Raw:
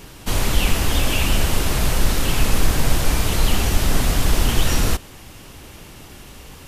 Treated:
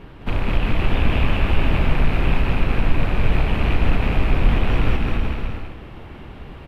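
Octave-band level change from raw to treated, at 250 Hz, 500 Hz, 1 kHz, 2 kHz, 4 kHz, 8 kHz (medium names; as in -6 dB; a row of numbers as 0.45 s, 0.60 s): +1.0 dB, 0.0 dB, -0.5 dB, -0.5 dB, -8.5 dB, under -25 dB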